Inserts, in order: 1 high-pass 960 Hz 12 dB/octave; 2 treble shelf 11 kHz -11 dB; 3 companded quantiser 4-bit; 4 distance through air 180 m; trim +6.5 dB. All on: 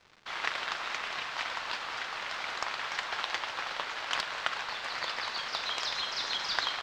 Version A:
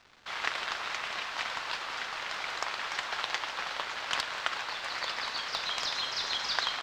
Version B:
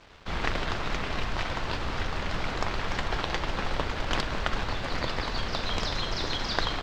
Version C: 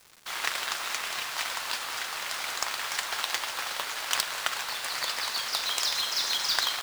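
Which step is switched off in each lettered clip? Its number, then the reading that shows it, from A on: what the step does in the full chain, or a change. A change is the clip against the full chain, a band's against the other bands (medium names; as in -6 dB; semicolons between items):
2, 8 kHz band +2.0 dB; 1, 125 Hz band +25.0 dB; 4, 8 kHz band +13.0 dB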